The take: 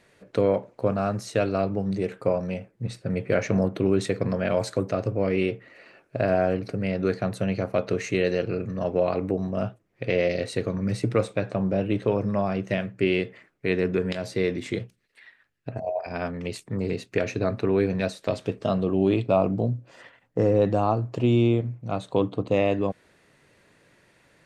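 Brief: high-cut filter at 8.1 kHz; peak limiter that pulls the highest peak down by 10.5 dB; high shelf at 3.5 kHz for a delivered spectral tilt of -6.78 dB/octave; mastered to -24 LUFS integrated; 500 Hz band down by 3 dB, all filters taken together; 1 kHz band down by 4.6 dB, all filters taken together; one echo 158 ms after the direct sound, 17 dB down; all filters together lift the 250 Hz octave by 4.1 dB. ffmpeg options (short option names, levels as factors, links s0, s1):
-af "lowpass=8100,equalizer=f=250:t=o:g=7.5,equalizer=f=500:t=o:g=-5,equalizer=f=1000:t=o:g=-5.5,highshelf=f=3500:g=5,alimiter=limit=0.112:level=0:latency=1,aecho=1:1:158:0.141,volume=1.88"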